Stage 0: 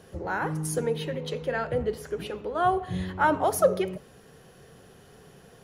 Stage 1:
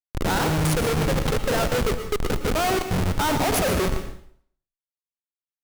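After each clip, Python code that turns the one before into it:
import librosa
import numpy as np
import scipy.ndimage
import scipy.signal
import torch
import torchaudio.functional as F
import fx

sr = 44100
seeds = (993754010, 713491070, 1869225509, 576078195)

y = fx.low_shelf(x, sr, hz=160.0, db=-8.0)
y = fx.schmitt(y, sr, flips_db=-31.0)
y = fx.rev_plate(y, sr, seeds[0], rt60_s=0.58, hf_ratio=0.95, predelay_ms=100, drr_db=8.5)
y = F.gain(torch.from_numpy(y), 8.0).numpy()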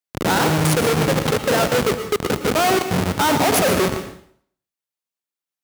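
y = scipy.signal.sosfilt(scipy.signal.butter(2, 130.0, 'highpass', fs=sr, output='sos'), x)
y = F.gain(torch.from_numpy(y), 5.5).numpy()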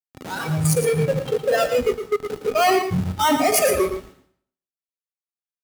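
y = fx.noise_reduce_blind(x, sr, reduce_db=17)
y = fx.comb_fb(y, sr, f0_hz=260.0, decay_s=0.18, harmonics='odd', damping=0.0, mix_pct=60)
y = y + 10.0 ** (-9.0 / 20.0) * np.pad(y, (int(113 * sr / 1000.0), 0))[:len(y)]
y = F.gain(torch.from_numpy(y), 8.5).numpy()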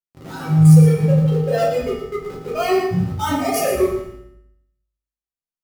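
y = fx.low_shelf(x, sr, hz=420.0, db=7.0)
y = fx.comb_fb(y, sr, f0_hz=52.0, decay_s=0.75, harmonics='odd', damping=0.0, mix_pct=70)
y = fx.room_shoebox(y, sr, seeds[1], volume_m3=57.0, walls='mixed', distance_m=0.83)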